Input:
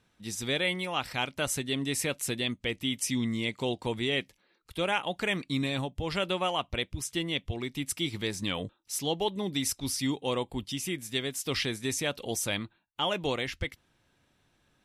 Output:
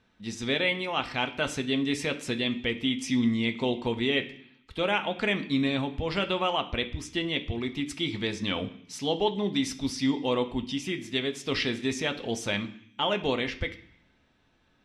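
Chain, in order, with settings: low-pass 4.6 kHz 12 dB/octave; on a send: reverberation RT60 0.60 s, pre-delay 3 ms, DRR 6.5 dB; on the sum: trim +2 dB

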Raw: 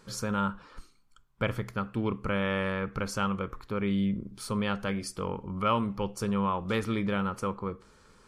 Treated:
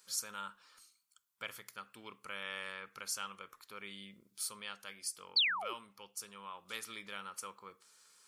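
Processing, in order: painted sound fall, 5.36–5.74 s, 310–4800 Hz -21 dBFS; gain riding 2 s; differentiator

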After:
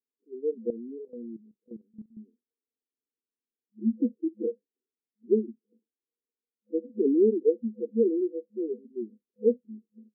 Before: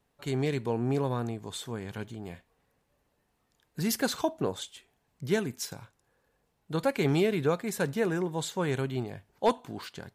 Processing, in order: spectral noise reduction 29 dB; FFT band-pass 210–500 Hz; 0.70–2.17 s: level held to a coarse grid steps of 15 dB; trim +6 dB

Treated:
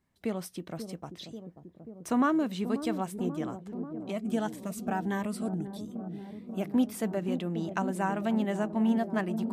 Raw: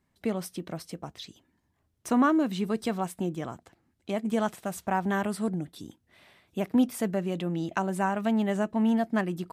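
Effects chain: feedback echo behind a low-pass 537 ms, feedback 74%, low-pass 560 Hz, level -8 dB; 4.12–6.63 s: Shepard-style phaser rising 1.7 Hz; trim -3 dB

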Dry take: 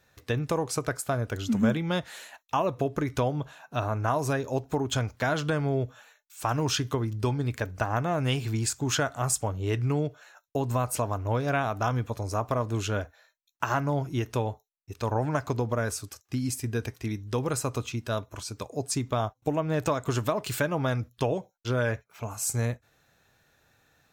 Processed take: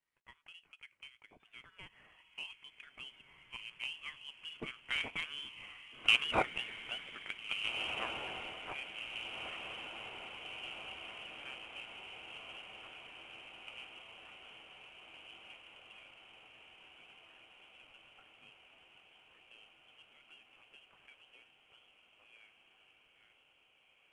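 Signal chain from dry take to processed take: Doppler pass-by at 6.06 s, 21 m/s, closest 9.9 m; high-pass 820 Hz 24 dB/octave; in parallel at -9 dB: bit crusher 5-bit; on the sum: frequency inversion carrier 3.8 kHz; on a send: echo that smears into a reverb 1768 ms, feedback 65%, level -7.5 dB; on the sum: trim +1.5 dB; IMA ADPCM 88 kbps 22.05 kHz

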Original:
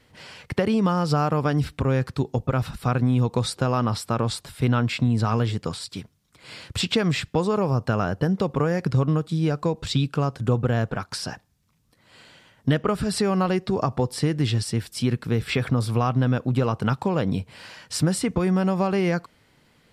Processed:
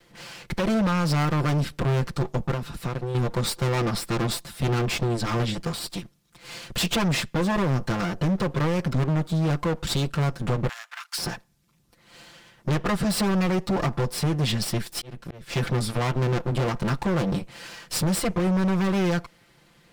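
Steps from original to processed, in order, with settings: comb filter that takes the minimum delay 5.8 ms; 2.53–3.15 s: compression 6:1, threshold -30 dBFS, peak gain reduction 9.5 dB; 10.69–11.18 s: Bessel high-pass 1.7 kHz, order 6; 14.76–15.56 s: slow attack 575 ms; overload inside the chain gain 23.5 dB; trim +3.5 dB

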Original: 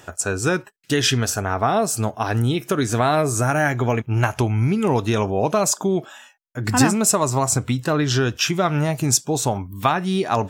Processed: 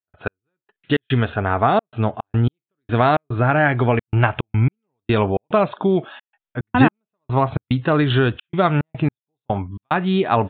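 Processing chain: trance gate ".x...xx.xxxxx.xx" 109 bpm -60 dB; resampled via 8 kHz; trim +3 dB

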